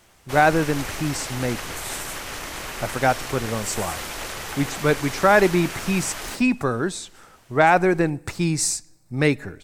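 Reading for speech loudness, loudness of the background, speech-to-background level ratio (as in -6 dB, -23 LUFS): -22.0 LUFS, -31.5 LUFS, 9.5 dB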